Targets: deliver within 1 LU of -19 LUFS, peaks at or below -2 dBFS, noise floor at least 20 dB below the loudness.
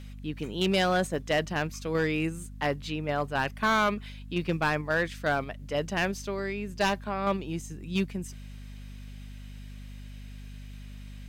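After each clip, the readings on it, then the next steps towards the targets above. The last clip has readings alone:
clipped samples 1.2%; clipping level -19.5 dBFS; hum 50 Hz; highest harmonic 250 Hz; hum level -41 dBFS; loudness -29.5 LUFS; peak level -19.5 dBFS; loudness target -19.0 LUFS
-> clip repair -19.5 dBFS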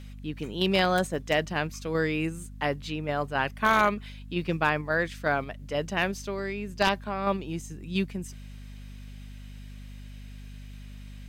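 clipped samples 0.0%; hum 50 Hz; highest harmonic 250 Hz; hum level -41 dBFS
-> hum notches 50/100/150/200/250 Hz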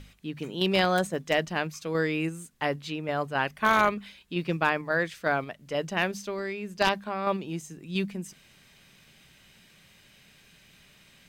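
hum not found; loudness -28.5 LUFS; peak level -10.0 dBFS; loudness target -19.0 LUFS
-> trim +9.5 dB; peak limiter -2 dBFS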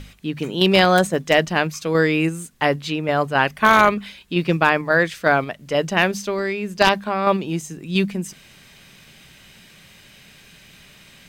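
loudness -19.5 LUFS; peak level -2.0 dBFS; noise floor -49 dBFS

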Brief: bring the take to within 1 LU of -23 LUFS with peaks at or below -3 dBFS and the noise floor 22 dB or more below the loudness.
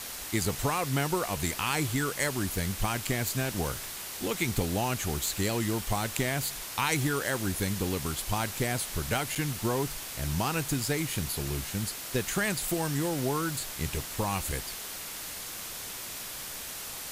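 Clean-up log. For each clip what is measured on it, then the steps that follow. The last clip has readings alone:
dropouts 1; longest dropout 7.0 ms; noise floor -40 dBFS; noise floor target -53 dBFS; loudness -30.5 LUFS; peak level -11.5 dBFS; loudness target -23.0 LUFS
-> interpolate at 9.35 s, 7 ms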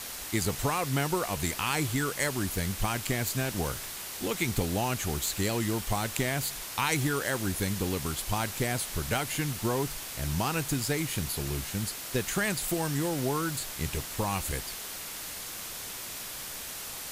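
dropouts 0; noise floor -40 dBFS; noise floor target -53 dBFS
-> noise print and reduce 13 dB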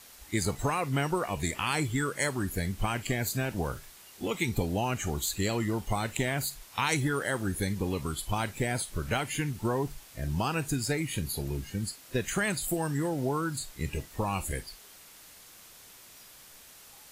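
noise floor -53 dBFS; noise floor target -54 dBFS
-> noise print and reduce 6 dB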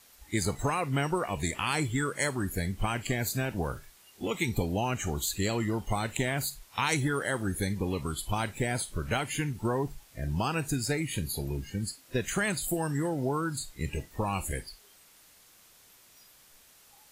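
noise floor -58 dBFS; loudness -31.5 LUFS; peak level -12.5 dBFS; loudness target -23.0 LUFS
-> trim +8.5 dB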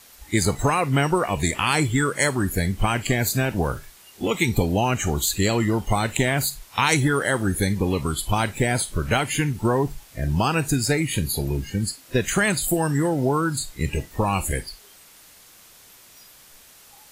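loudness -23.0 LUFS; peak level -4.0 dBFS; noise floor -50 dBFS

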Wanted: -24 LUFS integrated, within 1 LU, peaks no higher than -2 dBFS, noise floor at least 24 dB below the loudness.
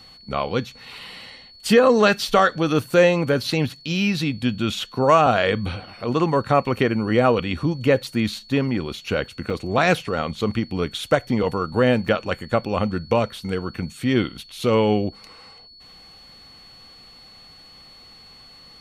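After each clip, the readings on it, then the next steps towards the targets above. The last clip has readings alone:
dropouts 2; longest dropout 3.0 ms; steady tone 4.4 kHz; tone level -45 dBFS; loudness -21.5 LUFS; peak level -5.0 dBFS; loudness target -24.0 LUFS
-> interpolate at 9.50/12.08 s, 3 ms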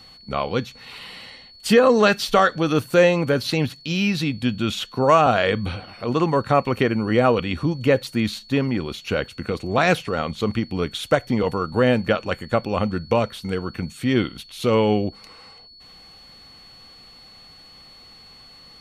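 dropouts 0; steady tone 4.4 kHz; tone level -45 dBFS
-> band-stop 4.4 kHz, Q 30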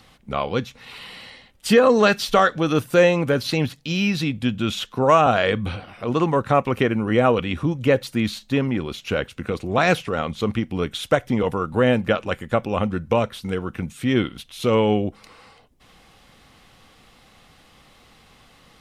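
steady tone not found; loudness -21.5 LUFS; peak level -5.0 dBFS; loudness target -24.0 LUFS
-> trim -2.5 dB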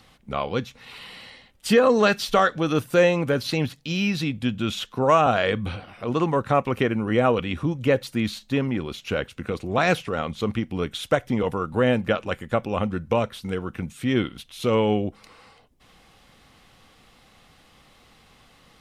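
loudness -24.0 LUFS; peak level -7.5 dBFS; noise floor -56 dBFS

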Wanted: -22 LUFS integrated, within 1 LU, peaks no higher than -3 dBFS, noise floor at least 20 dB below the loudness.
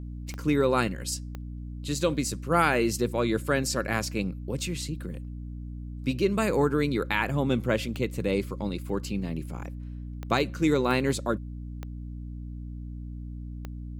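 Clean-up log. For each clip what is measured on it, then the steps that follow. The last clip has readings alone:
clicks found 7; hum 60 Hz; highest harmonic 300 Hz; hum level -35 dBFS; loudness -27.5 LUFS; peak level -9.5 dBFS; loudness target -22.0 LUFS
-> de-click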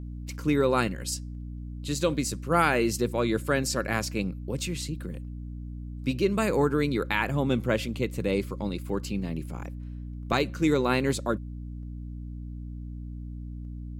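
clicks found 0; hum 60 Hz; highest harmonic 300 Hz; hum level -35 dBFS
-> de-hum 60 Hz, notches 5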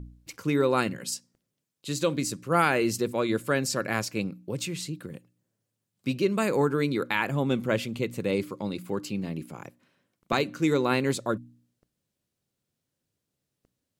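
hum not found; loudness -28.0 LUFS; peak level -9.5 dBFS; loudness target -22.0 LUFS
-> trim +6 dB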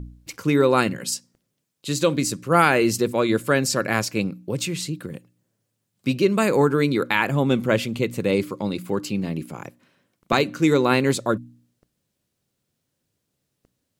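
loudness -22.0 LUFS; peak level -3.5 dBFS; noise floor -77 dBFS

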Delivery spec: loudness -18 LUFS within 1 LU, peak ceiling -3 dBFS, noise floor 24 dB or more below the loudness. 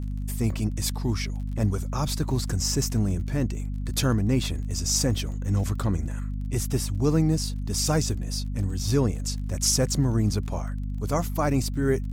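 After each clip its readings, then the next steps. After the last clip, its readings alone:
tick rate 26 per s; hum 50 Hz; highest harmonic 250 Hz; hum level -27 dBFS; loudness -26.5 LUFS; peak level -10.5 dBFS; loudness target -18.0 LUFS
-> de-click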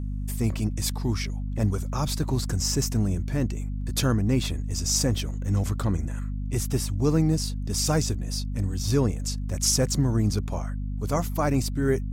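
tick rate 0.25 per s; hum 50 Hz; highest harmonic 250 Hz; hum level -27 dBFS
-> de-hum 50 Hz, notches 5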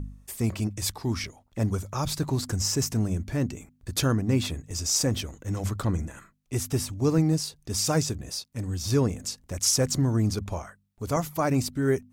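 hum not found; loudness -27.5 LUFS; peak level -11.5 dBFS; loudness target -18.0 LUFS
-> trim +9.5 dB; peak limiter -3 dBFS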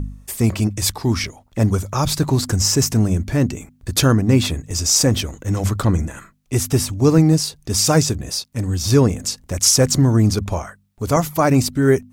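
loudness -18.0 LUFS; peak level -3.0 dBFS; noise floor -56 dBFS

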